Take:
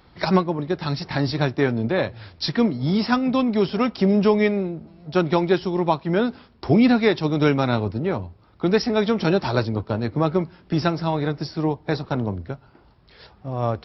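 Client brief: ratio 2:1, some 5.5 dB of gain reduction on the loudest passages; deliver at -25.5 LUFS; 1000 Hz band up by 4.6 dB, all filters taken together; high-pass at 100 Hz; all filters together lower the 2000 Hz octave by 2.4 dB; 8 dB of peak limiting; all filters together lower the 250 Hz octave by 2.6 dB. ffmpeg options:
-af "highpass=100,equalizer=f=250:t=o:g=-3.5,equalizer=f=1k:t=o:g=7.5,equalizer=f=2k:t=o:g=-6.5,acompressor=threshold=-21dB:ratio=2,volume=2.5dB,alimiter=limit=-13.5dB:level=0:latency=1"

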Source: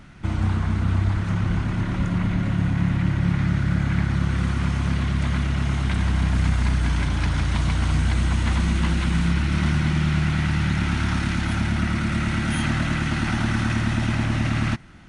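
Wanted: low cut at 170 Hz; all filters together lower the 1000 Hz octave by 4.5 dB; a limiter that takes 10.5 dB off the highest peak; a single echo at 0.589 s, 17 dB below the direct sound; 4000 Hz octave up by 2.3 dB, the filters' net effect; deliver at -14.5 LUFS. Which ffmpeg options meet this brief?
-af "highpass=170,equalizer=f=1k:t=o:g=-6.5,equalizer=f=4k:t=o:g=3.5,alimiter=limit=-23dB:level=0:latency=1,aecho=1:1:589:0.141,volume=17dB"

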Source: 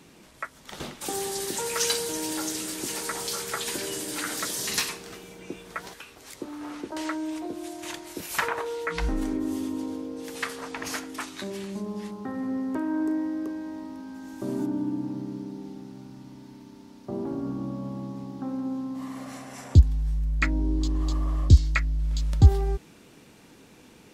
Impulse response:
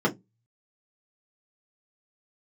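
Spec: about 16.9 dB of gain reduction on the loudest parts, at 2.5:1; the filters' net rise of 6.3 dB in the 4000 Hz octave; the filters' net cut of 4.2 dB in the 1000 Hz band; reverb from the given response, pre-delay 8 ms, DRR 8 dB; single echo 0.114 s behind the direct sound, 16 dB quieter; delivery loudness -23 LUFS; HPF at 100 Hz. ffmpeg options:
-filter_complex "[0:a]highpass=100,equalizer=f=1k:t=o:g=-6,equalizer=f=4k:t=o:g=8,acompressor=threshold=-40dB:ratio=2.5,aecho=1:1:114:0.158,asplit=2[a][b];[1:a]atrim=start_sample=2205,adelay=8[c];[b][c]afir=irnorm=-1:irlink=0,volume=-21.5dB[d];[a][d]amix=inputs=2:normalize=0,volume=15.5dB"

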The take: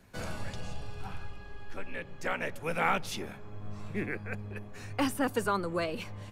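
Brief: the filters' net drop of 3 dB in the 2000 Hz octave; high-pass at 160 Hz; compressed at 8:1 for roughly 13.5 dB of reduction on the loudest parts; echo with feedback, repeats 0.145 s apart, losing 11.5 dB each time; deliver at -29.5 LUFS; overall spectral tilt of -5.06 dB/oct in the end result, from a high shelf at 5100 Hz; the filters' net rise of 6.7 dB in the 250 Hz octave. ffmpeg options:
-af "highpass=160,equalizer=f=250:t=o:g=9,equalizer=f=2k:t=o:g=-3,highshelf=f=5.1k:g=-7.5,acompressor=threshold=-34dB:ratio=8,aecho=1:1:145|290|435:0.266|0.0718|0.0194,volume=11dB"

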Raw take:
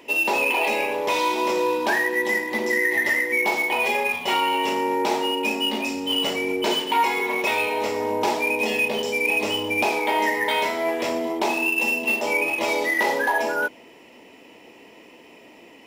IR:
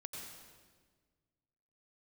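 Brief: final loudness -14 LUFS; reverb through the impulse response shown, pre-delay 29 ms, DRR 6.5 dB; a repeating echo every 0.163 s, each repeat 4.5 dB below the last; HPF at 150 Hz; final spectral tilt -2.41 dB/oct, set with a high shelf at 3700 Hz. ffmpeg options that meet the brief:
-filter_complex "[0:a]highpass=150,highshelf=f=3.7k:g=4,aecho=1:1:163|326|489|652|815|978|1141|1304|1467:0.596|0.357|0.214|0.129|0.0772|0.0463|0.0278|0.0167|0.01,asplit=2[a][b];[1:a]atrim=start_sample=2205,adelay=29[c];[b][c]afir=irnorm=-1:irlink=0,volume=-4dB[d];[a][d]amix=inputs=2:normalize=0,volume=4dB"

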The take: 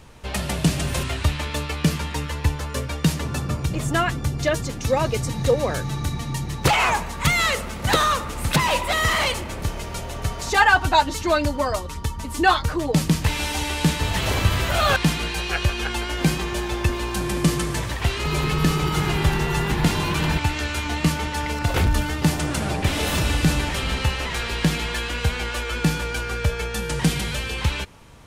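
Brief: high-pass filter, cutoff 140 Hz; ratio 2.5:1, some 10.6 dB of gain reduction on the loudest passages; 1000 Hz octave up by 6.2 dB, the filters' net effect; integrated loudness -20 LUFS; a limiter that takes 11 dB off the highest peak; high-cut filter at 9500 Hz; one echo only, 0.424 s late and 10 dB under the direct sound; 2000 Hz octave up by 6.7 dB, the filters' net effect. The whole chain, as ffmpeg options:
-af "highpass=140,lowpass=9.5k,equalizer=f=1k:t=o:g=6,equalizer=f=2k:t=o:g=6.5,acompressor=threshold=-22dB:ratio=2.5,alimiter=limit=-17dB:level=0:latency=1,aecho=1:1:424:0.316,volume=6dB"

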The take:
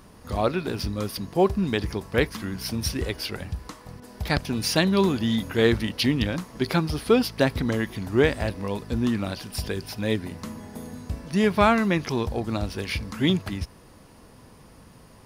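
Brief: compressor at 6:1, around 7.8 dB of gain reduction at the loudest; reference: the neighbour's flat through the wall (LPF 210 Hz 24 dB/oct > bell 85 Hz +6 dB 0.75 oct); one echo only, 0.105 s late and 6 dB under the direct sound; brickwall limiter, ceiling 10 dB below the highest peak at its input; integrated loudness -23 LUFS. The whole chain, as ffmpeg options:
-af "acompressor=threshold=-22dB:ratio=6,alimiter=limit=-20dB:level=0:latency=1,lowpass=f=210:w=0.5412,lowpass=f=210:w=1.3066,equalizer=f=85:t=o:w=0.75:g=6,aecho=1:1:105:0.501,volume=10dB"

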